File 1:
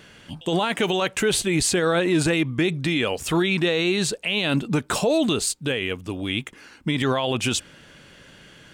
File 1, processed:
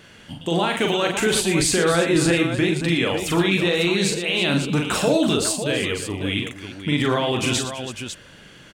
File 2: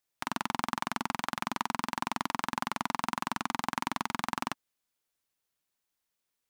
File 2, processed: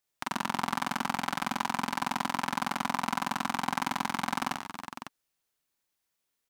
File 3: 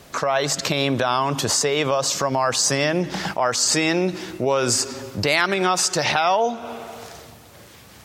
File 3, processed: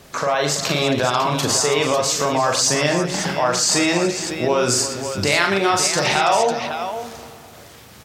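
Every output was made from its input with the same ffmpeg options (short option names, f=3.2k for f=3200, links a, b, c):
-af "aecho=1:1:41|91|115|330|550:0.631|0.15|0.282|0.224|0.376"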